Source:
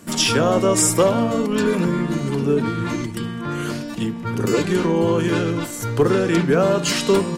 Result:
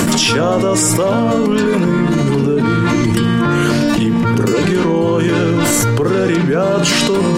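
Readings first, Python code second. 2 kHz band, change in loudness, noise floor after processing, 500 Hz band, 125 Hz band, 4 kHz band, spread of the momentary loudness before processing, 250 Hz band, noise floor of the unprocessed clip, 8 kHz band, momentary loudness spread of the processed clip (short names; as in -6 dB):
+7.0 dB, +6.0 dB, -15 dBFS, +4.0 dB, +7.5 dB, +6.0 dB, 10 LU, +7.0 dB, -30 dBFS, +5.0 dB, 2 LU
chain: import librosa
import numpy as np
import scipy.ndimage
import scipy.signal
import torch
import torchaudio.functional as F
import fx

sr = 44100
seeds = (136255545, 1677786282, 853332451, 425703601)

y = fx.high_shelf(x, sr, hz=8100.0, db=-5.5)
y = fx.env_flatten(y, sr, amount_pct=100)
y = y * librosa.db_to_amplitude(-1.5)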